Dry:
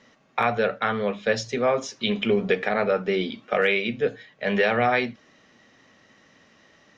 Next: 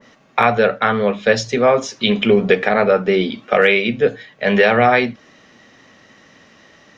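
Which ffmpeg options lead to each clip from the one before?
ffmpeg -i in.wav -af "adynamicequalizer=threshold=0.0178:dfrequency=1900:dqfactor=0.7:tfrequency=1900:tqfactor=0.7:attack=5:release=100:ratio=0.375:range=1.5:mode=cutabove:tftype=highshelf,volume=8.5dB" out.wav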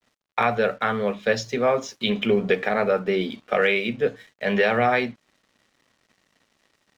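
ffmpeg -i in.wav -af "aeval=exprs='sgn(val(0))*max(abs(val(0))-0.00501,0)':channel_layout=same,volume=-7dB" out.wav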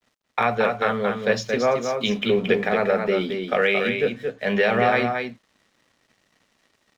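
ffmpeg -i in.wav -af "aecho=1:1:225:0.531" out.wav

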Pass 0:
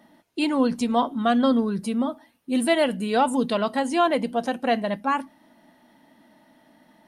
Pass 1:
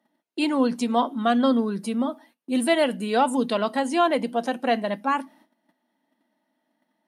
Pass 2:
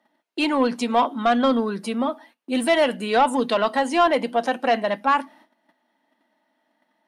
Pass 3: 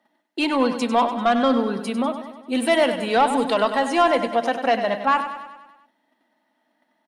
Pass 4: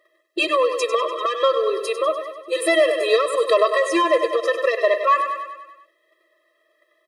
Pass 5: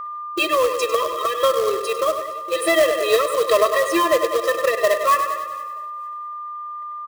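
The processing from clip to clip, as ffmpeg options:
ffmpeg -i in.wav -af "agate=range=-17dB:threshold=-52dB:ratio=16:detection=peak,highpass=frequency=190:width=0.5412,highpass=frequency=190:width=1.3066" out.wav
ffmpeg -i in.wav -filter_complex "[0:a]asplit=2[link_01][link_02];[link_02]highpass=frequency=720:poles=1,volume=13dB,asoftclip=type=tanh:threshold=-8dB[link_03];[link_01][link_03]amix=inputs=2:normalize=0,lowpass=frequency=3300:poles=1,volume=-6dB" out.wav
ffmpeg -i in.wav -af "aecho=1:1:98|196|294|392|490|588|686:0.316|0.18|0.103|0.0586|0.0334|0.019|0.0108" out.wav
ffmpeg -i in.wav -af "acompressor=threshold=-19dB:ratio=6,afftfilt=real='re*eq(mod(floor(b*sr/1024/340),2),1)':imag='im*eq(mod(floor(b*sr/1024/340),2),1)':win_size=1024:overlap=0.75,volume=8.5dB" out.wav
ffmpeg -i in.wav -af "acrusher=bits=3:mode=log:mix=0:aa=0.000001,aeval=exprs='val(0)+0.0398*sin(2*PI*1200*n/s)':channel_layout=same,aecho=1:1:462|924:0.0794|0.0167" out.wav

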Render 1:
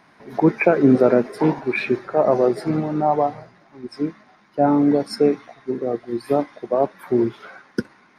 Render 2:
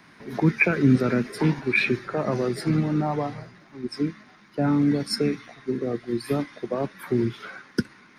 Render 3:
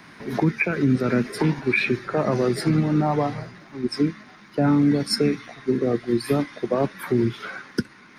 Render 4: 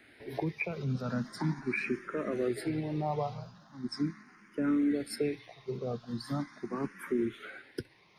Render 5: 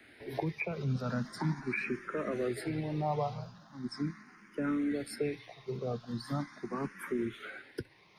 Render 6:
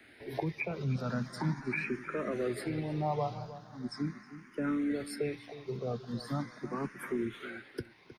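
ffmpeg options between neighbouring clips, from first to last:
ffmpeg -i in.wav -filter_complex "[0:a]equalizer=frequency=720:width_type=o:width=1.3:gain=-9.5,acrossover=split=210|1300|3600[link_01][link_02][link_03][link_04];[link_02]acompressor=threshold=-30dB:ratio=6[link_05];[link_01][link_05][link_03][link_04]amix=inputs=4:normalize=0,volume=4.5dB" out.wav
ffmpeg -i in.wav -af "alimiter=limit=-16.5dB:level=0:latency=1:release=496,volume=6dB" out.wav
ffmpeg -i in.wav -filter_complex "[0:a]asplit=2[link_01][link_02];[link_02]afreqshift=0.4[link_03];[link_01][link_03]amix=inputs=2:normalize=1,volume=-8.5dB" out.wav
ffmpeg -i in.wav -filter_complex "[0:a]acrossover=split=230|410|2300[link_01][link_02][link_03][link_04];[link_02]acompressor=threshold=-46dB:ratio=6[link_05];[link_04]alimiter=level_in=12dB:limit=-24dB:level=0:latency=1:release=234,volume=-12dB[link_06];[link_01][link_05][link_03][link_06]amix=inputs=4:normalize=0,volume=1dB" out.wav
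ffmpeg -i in.wav -filter_complex "[0:a]asplit=2[link_01][link_02];[link_02]adelay=313,lowpass=frequency=2400:poles=1,volume=-14dB,asplit=2[link_03][link_04];[link_04]adelay=313,lowpass=frequency=2400:poles=1,volume=0.28,asplit=2[link_05][link_06];[link_06]adelay=313,lowpass=frequency=2400:poles=1,volume=0.28[link_07];[link_01][link_03][link_05][link_07]amix=inputs=4:normalize=0" out.wav

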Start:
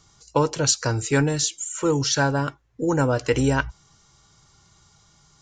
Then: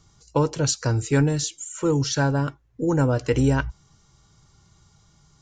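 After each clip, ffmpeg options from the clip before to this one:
ffmpeg -i in.wav -af "lowshelf=frequency=390:gain=8,volume=-4.5dB" out.wav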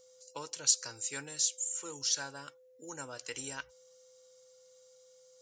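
ffmpeg -i in.wav -af "aderivative,aeval=exprs='val(0)+0.00112*sin(2*PI*510*n/s)':channel_layout=same" out.wav

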